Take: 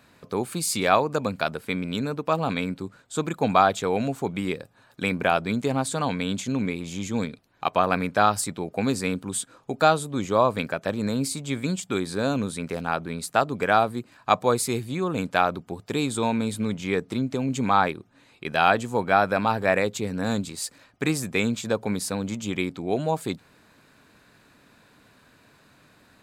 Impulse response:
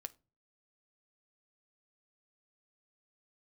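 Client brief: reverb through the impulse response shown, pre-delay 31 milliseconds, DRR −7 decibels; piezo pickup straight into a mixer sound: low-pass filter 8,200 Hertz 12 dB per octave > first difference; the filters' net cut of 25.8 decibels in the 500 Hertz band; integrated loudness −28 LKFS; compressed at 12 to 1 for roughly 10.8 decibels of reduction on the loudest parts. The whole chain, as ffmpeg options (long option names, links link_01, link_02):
-filter_complex "[0:a]equalizer=frequency=500:width_type=o:gain=-5,acompressor=threshold=-25dB:ratio=12,asplit=2[link_01][link_02];[1:a]atrim=start_sample=2205,adelay=31[link_03];[link_02][link_03]afir=irnorm=-1:irlink=0,volume=11dB[link_04];[link_01][link_04]amix=inputs=2:normalize=0,lowpass=8200,aderivative,volume=6.5dB"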